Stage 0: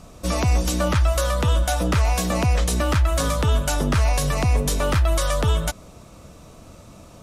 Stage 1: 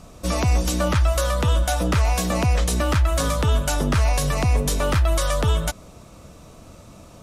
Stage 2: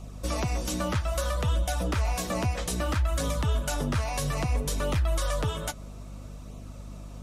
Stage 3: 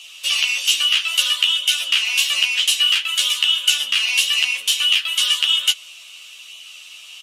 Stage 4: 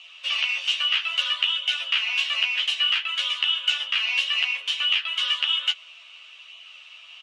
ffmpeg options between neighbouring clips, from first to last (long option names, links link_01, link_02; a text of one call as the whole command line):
ffmpeg -i in.wav -af anull out.wav
ffmpeg -i in.wav -filter_complex "[0:a]flanger=delay=0.3:depth=9:regen=-38:speed=0.61:shape=sinusoidal,aeval=exprs='val(0)+0.01*(sin(2*PI*50*n/s)+sin(2*PI*2*50*n/s)/2+sin(2*PI*3*50*n/s)/3+sin(2*PI*4*50*n/s)/4+sin(2*PI*5*50*n/s)/5)':channel_layout=same,asplit=2[link_01][link_02];[link_02]acompressor=threshold=-28dB:ratio=6,volume=2dB[link_03];[link_01][link_03]amix=inputs=2:normalize=0,volume=-7.5dB" out.wav
ffmpeg -i in.wav -filter_complex "[0:a]highpass=frequency=2900:width_type=q:width=11,asplit=2[link_01][link_02];[link_02]adelay=13,volume=-2dB[link_03];[link_01][link_03]amix=inputs=2:normalize=0,asplit=2[link_04][link_05];[link_05]volume=31dB,asoftclip=hard,volume=-31dB,volume=-12dB[link_06];[link_04][link_06]amix=inputs=2:normalize=0,volume=8.5dB" out.wav
ffmpeg -i in.wav -af "highpass=590,lowpass=2300" out.wav